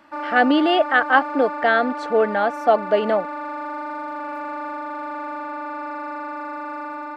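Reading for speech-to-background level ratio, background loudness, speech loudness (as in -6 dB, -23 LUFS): 11.0 dB, -30.0 LUFS, -19.0 LUFS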